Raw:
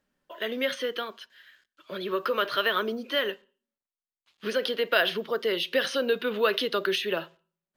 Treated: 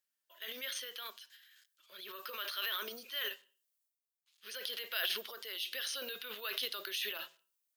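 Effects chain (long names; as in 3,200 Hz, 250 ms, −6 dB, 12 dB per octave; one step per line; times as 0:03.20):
first difference
transient designer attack −2 dB, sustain +11 dB
low-shelf EQ 130 Hz −6.5 dB
level −1.5 dB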